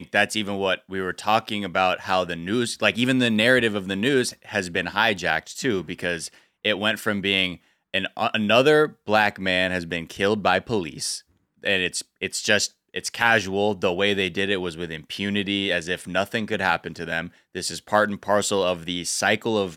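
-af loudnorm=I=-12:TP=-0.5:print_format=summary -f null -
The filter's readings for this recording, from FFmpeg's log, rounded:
Input Integrated:    -23.1 LUFS
Input True Peak:      -3.7 dBTP
Input LRA:             2.9 LU
Input Threshold:     -33.2 LUFS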